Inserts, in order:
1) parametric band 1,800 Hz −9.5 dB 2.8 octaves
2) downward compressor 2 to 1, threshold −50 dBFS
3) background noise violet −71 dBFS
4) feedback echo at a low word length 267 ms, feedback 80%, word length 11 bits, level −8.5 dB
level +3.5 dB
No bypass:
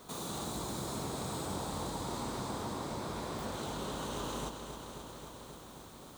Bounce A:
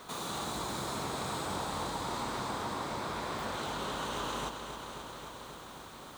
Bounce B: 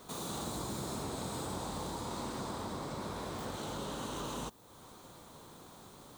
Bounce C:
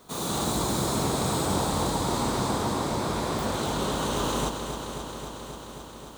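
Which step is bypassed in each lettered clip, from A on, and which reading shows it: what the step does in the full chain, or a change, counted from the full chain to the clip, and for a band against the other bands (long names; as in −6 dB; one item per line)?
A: 1, 2 kHz band +6.5 dB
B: 4, change in momentary loudness spread +4 LU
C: 2, average gain reduction 8.5 dB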